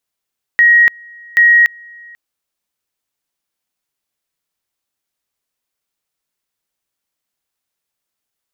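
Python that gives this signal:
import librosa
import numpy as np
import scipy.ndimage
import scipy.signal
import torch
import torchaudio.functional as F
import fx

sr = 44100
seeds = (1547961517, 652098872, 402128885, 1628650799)

y = fx.two_level_tone(sr, hz=1890.0, level_db=-5.0, drop_db=29.0, high_s=0.29, low_s=0.49, rounds=2)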